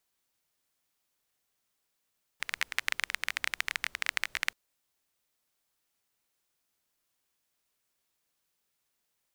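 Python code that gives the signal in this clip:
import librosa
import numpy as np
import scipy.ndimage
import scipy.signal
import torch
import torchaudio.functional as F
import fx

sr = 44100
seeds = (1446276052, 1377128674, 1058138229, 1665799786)

y = fx.rain(sr, seeds[0], length_s=2.13, drops_per_s=18.0, hz=2000.0, bed_db=-27)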